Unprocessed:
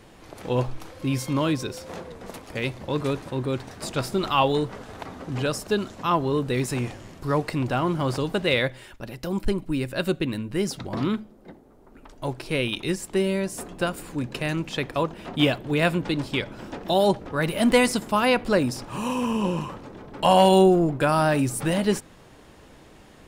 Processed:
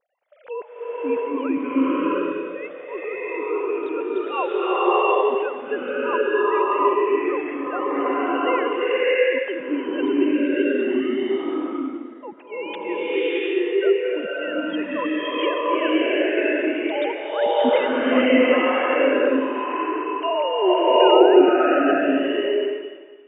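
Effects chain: formants replaced by sine waves; gate -51 dBFS, range -13 dB; swelling reverb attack 710 ms, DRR -9.5 dB; trim -6 dB

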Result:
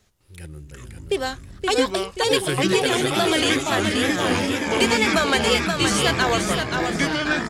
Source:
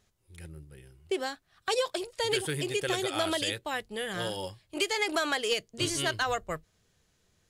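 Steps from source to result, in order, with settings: ever faster or slower copies 204 ms, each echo -6 st, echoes 2; feedback delay 526 ms, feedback 38%, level -5 dB; wow and flutter 73 cents; trim +7.5 dB

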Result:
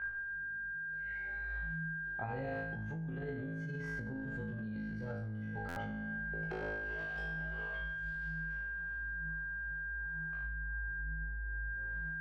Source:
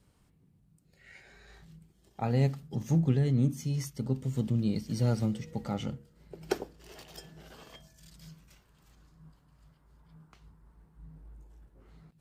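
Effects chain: flange 0.38 Hz, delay 0.4 ms, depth 8.4 ms, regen +61%; whistle 1.6 kHz -40 dBFS; tilt EQ -4 dB/octave; flutter echo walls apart 3.2 m, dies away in 0.82 s; peak limiter -25.5 dBFS, peak gain reduction 21 dB; three-band isolator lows -14 dB, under 580 Hz, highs -16 dB, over 3.5 kHz; buffer glitch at 5.68 s, samples 512, times 6; trim +3 dB

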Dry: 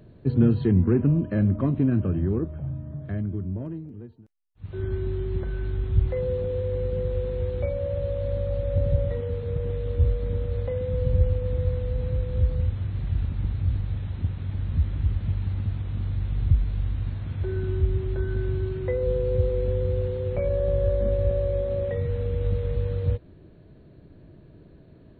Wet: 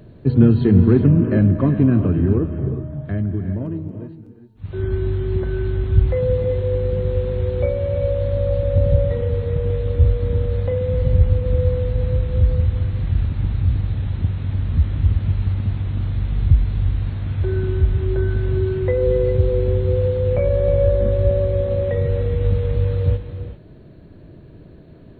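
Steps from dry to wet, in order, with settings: gated-style reverb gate 420 ms rising, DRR 7.5 dB; trim +6.5 dB

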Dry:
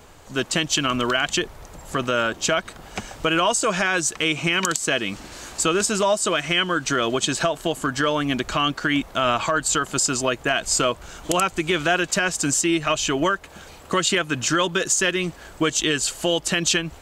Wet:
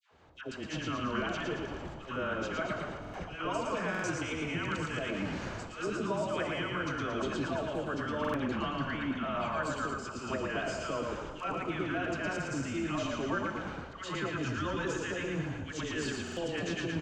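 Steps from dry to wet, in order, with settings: peak limiter -14.5 dBFS, peak gain reduction 9.5 dB; distance through air 200 m; reverse; compression 5:1, threshold -33 dBFS, peak gain reduction 12.5 dB; reverse; high-pass 59 Hz 24 dB/octave; on a send: frequency-shifting echo 113 ms, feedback 57%, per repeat -32 Hz, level -3.5 dB; on the sum: slow attack 108 ms; expander -40 dBFS; phase dispersion lows, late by 111 ms, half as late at 930 Hz; dynamic bell 3.7 kHz, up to -6 dB, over -54 dBFS, Q 1.3; Schroeder reverb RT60 1.8 s, combs from 26 ms, DRR 9 dB; buffer glitch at 3.00/3.90/8.20/16.23 s, samples 2048, times 2

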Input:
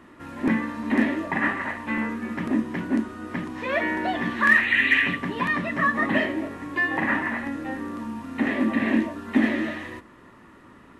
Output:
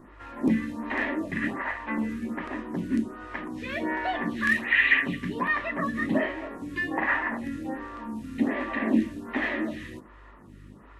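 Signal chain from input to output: hum 50 Hz, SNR 21 dB; lamp-driven phase shifter 1.3 Hz

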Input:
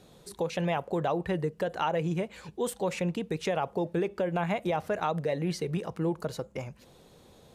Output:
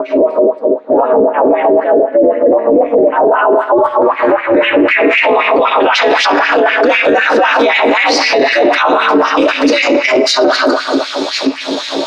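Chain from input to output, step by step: slices played last to first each 93 ms, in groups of 6; time stretch by phase-locked vocoder 1.6×; low-pass sweep 420 Hz -> 4.9 kHz, 3.07–6.11 s; reverberation RT60 1.4 s, pre-delay 3 ms, DRR 0 dB; ring modulator 120 Hz; LFO high-pass sine 3.9 Hz 350–2200 Hz; in parallel at -1 dB: compression, threshold -58 dBFS, peak gain reduction 38 dB; on the sum: dynamic bell 1.4 kHz, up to +4 dB, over -42 dBFS, Q 0.87; loudness maximiser +35.5 dB; trim -1 dB

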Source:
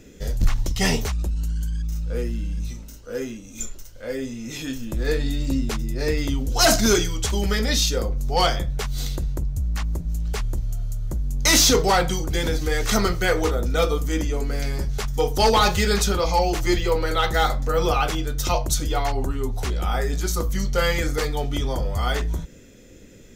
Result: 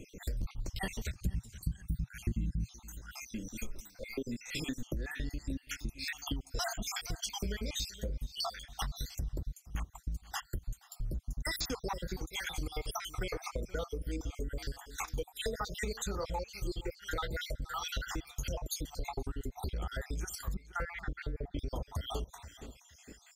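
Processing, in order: random holes in the spectrogram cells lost 65%; 20.54–21.59 s: distance through air 500 m; feedback delay 473 ms, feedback 21%, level -24 dB; compression 12:1, threshold -33 dBFS, peak gain reduction 20 dB; 1.11–2.74 s: graphic EQ 125/250/500/1000 Hz +12/+4/-5/-3 dB

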